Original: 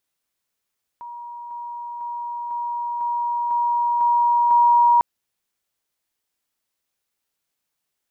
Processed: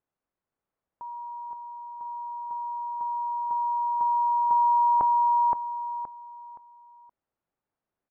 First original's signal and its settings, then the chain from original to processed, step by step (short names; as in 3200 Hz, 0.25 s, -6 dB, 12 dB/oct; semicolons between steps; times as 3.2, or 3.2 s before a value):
level ladder 953 Hz -32.5 dBFS, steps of 3 dB, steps 8, 0.50 s 0.00 s
LPF 1100 Hz 12 dB/oct; on a send: feedback echo 0.521 s, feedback 29%, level -3.5 dB